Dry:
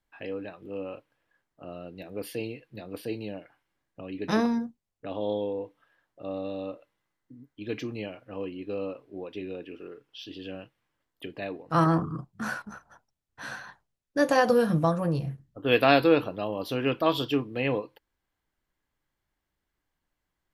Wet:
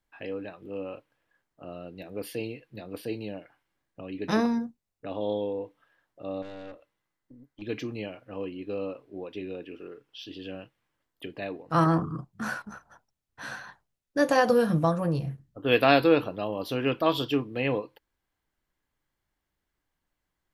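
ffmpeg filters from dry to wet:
-filter_complex "[0:a]asettb=1/sr,asplit=3[s0][s1][s2];[s0]atrim=end=4.344[s3];[s1]atrim=start=4.34:end=5.21,asetpts=PTS-STARTPTS,afade=t=in:d=0.004:c=qsin,afade=t=out:st=0.866:d=0.004:c=qsin,bandreject=f=3200:w=12[s4];[s2]atrim=start=5.206[s5];[s3][s4]acrossfade=d=0.004:c1=hsin:c2=qsin[s6];[s6][s5]acrossfade=d=0.004:c1=qsin:c2=hsin,asettb=1/sr,asplit=3[s7][s8][s9];[s7]atrim=end=6.424[s10];[s8]atrim=start=6.42:end=7.62,asetpts=PTS-STARTPTS,afade=t=in:d=0.004:c=qsin,afade=t=out:st=1.196:d=0.004:c=qsin,aeval=exprs='(tanh(89.1*val(0)+0.5)-tanh(0.5))/89.1':c=same[s11];[s9]atrim=start=7.616[s12];[s10][s11]acrossfade=d=0.004:c1=hsin:c2=qsin[s13];[s13][s12]acrossfade=d=0.004:c1=qsin:c2=hsin"

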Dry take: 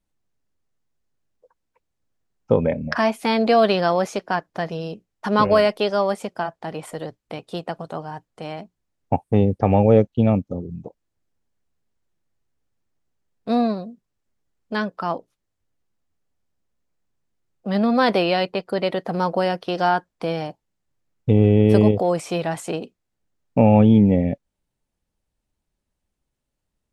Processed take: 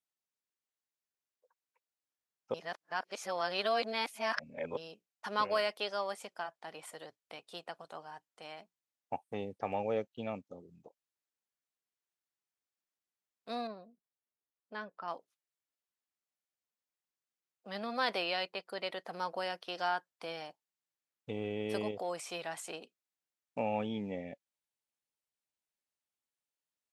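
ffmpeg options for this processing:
-filter_complex "[0:a]asettb=1/sr,asplit=3[s0][s1][s2];[s0]atrim=end=13.674[s3];[s1]atrim=start=13.67:end=15.08,asetpts=PTS-STARTPTS,afade=t=in:d=0.004:c=qsin,afade=t=out:st=1.406:d=0.004:c=qsin,lowpass=f=1100:p=1[s4];[s2]atrim=start=15.076[s5];[s3][s4]acrossfade=d=0.004:c1=hsin:c2=qsin[s6];[s6][s5]acrossfade=d=0.004:c1=qsin:c2=hsin,asplit=3[s7][s8][s9];[s7]atrim=end=2.542[s10];[s8]atrim=start=2.538:end=4.772,asetpts=PTS-STARTPTS,areverse[s11];[s9]atrim=start=4.768[s12];[s10][s11]acrossfade=d=0.004:c1=hsin:c2=hsin[s13];[s13][s12]acrossfade=d=0.004:c1=hsin:c2=hsin,highpass=f=1500:p=1,volume=0.398"

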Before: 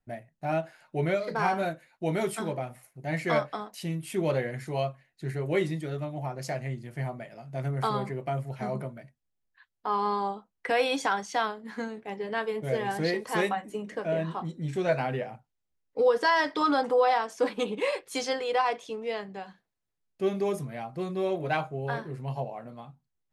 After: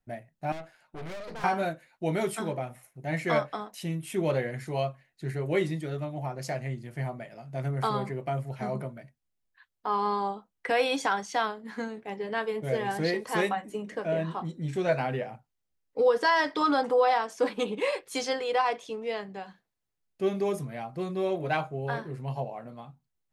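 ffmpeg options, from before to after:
-filter_complex "[0:a]asettb=1/sr,asplit=3[s0][s1][s2];[s0]atrim=end=0.524[s3];[s1]atrim=start=0.52:end=1.44,asetpts=PTS-STARTPTS,afade=t=in:d=0.004:c=qsin,afade=t=out:st=0.916:d=0.004:c=qsin,aeval=exprs='(tanh(79.4*val(0)+0.8)-tanh(0.8))/79.4':c=same[s4];[s2]atrim=start=1.436[s5];[s3][s4]acrossfade=d=0.004:c1=hsin:c2=qsin[s6];[s6][s5]acrossfade=d=0.004:c1=qsin:c2=hsin,asettb=1/sr,asplit=3[s7][s8][s9];[s7]atrim=end=2.364[s10];[s8]atrim=start=2.36:end=4.33,asetpts=PTS-STARTPTS,afade=t=in:d=0.004:c=qsin,afade=t=out:st=1.966:d=0.004:c=qsin,bandreject=f=4600:w=12[s11];[s9]atrim=start=4.326[s12];[s10][s11]acrossfade=d=0.004:c1=hsin:c2=qsin[s13];[s13][s12]acrossfade=d=0.004:c1=qsin:c2=hsin"

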